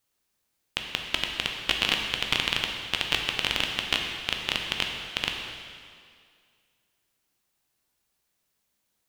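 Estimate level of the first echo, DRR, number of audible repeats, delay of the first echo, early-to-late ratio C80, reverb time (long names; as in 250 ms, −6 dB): no echo audible, 1.5 dB, no echo audible, no echo audible, 4.5 dB, 2.1 s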